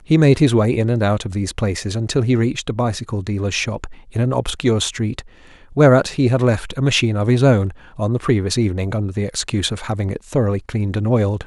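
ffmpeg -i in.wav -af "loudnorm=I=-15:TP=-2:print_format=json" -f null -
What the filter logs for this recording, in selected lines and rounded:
"input_i" : "-18.9",
"input_tp" : "-1.3",
"input_lra" : "2.9",
"input_thresh" : "-29.0",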